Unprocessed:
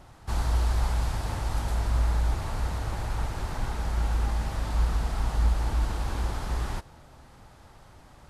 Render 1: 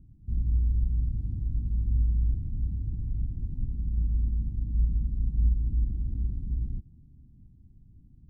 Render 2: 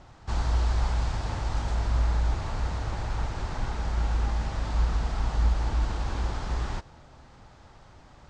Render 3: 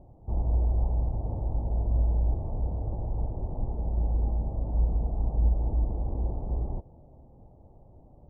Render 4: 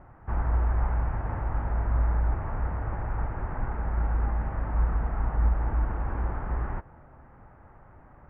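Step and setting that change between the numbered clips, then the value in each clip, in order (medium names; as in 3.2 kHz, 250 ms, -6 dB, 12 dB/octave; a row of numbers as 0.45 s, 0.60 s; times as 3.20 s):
inverse Chebyshev low-pass, stop band from: 510 Hz, 12 kHz, 1.4 kHz, 3.7 kHz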